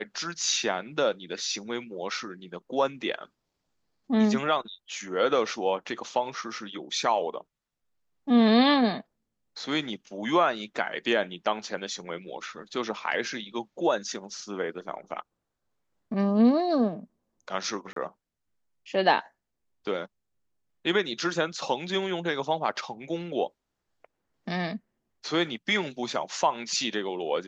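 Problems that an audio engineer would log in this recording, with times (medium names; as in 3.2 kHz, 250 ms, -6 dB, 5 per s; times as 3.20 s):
17.93–17.96 s: dropout 33 ms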